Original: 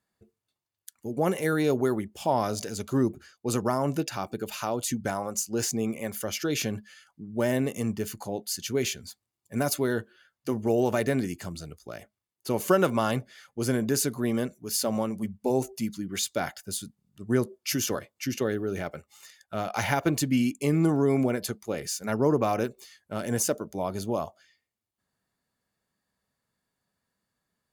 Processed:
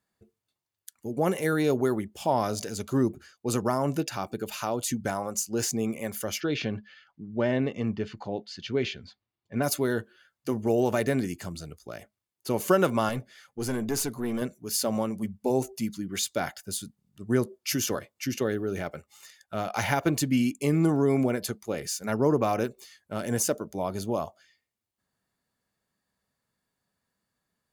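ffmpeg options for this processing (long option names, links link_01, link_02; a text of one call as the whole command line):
ffmpeg -i in.wav -filter_complex "[0:a]asplit=3[link_01][link_02][link_03];[link_01]afade=type=out:start_time=6.39:duration=0.02[link_04];[link_02]lowpass=frequency=4100:width=0.5412,lowpass=frequency=4100:width=1.3066,afade=type=in:start_time=6.39:duration=0.02,afade=type=out:start_time=9.62:duration=0.02[link_05];[link_03]afade=type=in:start_time=9.62:duration=0.02[link_06];[link_04][link_05][link_06]amix=inputs=3:normalize=0,asettb=1/sr,asplit=3[link_07][link_08][link_09];[link_07]atrim=end=13.094[link_10];[link_08]atrim=start=13.09:end=14.42,asetpts=PTS-STARTPTS,afade=type=in:duration=0.004:curve=qsin,afade=type=out:start_time=1.326:duration=0.004:curve=qsin,aeval=exprs='(tanh(8.91*val(0)+0.45)-tanh(0.45))/8.91':channel_layout=same[link_11];[link_09]atrim=start=14.416[link_12];[link_10][link_11]acrossfade=duration=0.004:curve1=hsin:curve2=qsin[link_13];[link_13][link_12]acrossfade=duration=0.004:curve1=qsin:curve2=hsin" out.wav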